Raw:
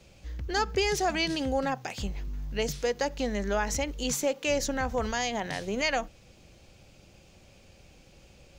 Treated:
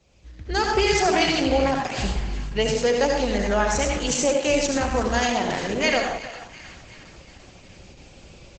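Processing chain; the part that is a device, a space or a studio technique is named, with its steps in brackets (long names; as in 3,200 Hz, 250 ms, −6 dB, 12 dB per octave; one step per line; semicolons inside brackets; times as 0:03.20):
echo with a time of its own for lows and highs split 960 Hz, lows 87 ms, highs 358 ms, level −14.5 dB
0:03.11–0:04.14: dynamic equaliser 300 Hz, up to −4 dB, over −42 dBFS, Q 1.7
speakerphone in a meeting room (convolution reverb RT60 0.55 s, pre-delay 67 ms, DRR 1.5 dB; far-end echo of a speakerphone 310 ms, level −15 dB; automatic gain control gain up to 13.5 dB; level −5.5 dB; Opus 12 kbit/s 48,000 Hz)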